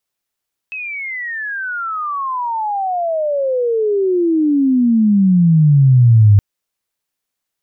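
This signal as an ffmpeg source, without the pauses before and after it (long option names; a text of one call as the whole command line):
ffmpeg -f lavfi -i "aevalsrc='pow(10,(-23+18.5*t/5.67)/20)*sin(2*PI*2600*5.67/log(99/2600)*(exp(log(99/2600)*t/5.67)-1))':duration=5.67:sample_rate=44100" out.wav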